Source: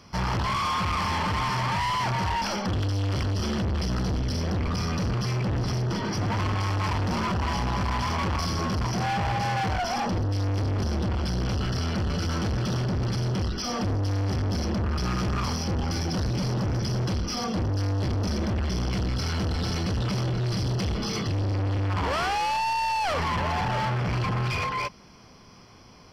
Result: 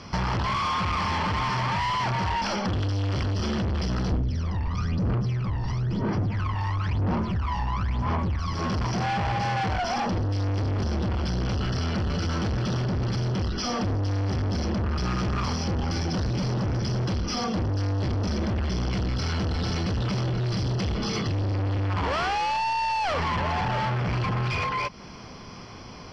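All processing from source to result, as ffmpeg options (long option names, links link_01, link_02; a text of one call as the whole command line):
ffmpeg -i in.wav -filter_complex "[0:a]asettb=1/sr,asplit=3[link_01][link_02][link_03];[link_01]atrim=end=4.124[link_04];[link_02]atrim=start=4.12:end=8.54,asetpts=PTS-STARTPTS,afade=type=in:duration=0.004:curve=qsin,afade=type=out:start_time=4.416:duration=0.004:curve=qsin,lowpass=frequency=2900:poles=1,aphaser=in_gain=1:out_gain=1:delay=1.1:decay=0.75:speed=1:type=sinusoidal[link_05];[link_03]atrim=start=8.536[link_06];[link_04][link_05]acrossfade=duration=0.004:curve1=hsin:curve2=qsin[link_07];[link_07][link_06]acrossfade=duration=0.004:curve1=qsin:curve2=hsin,lowpass=5700,acompressor=threshold=-35dB:ratio=6,volume=9dB" out.wav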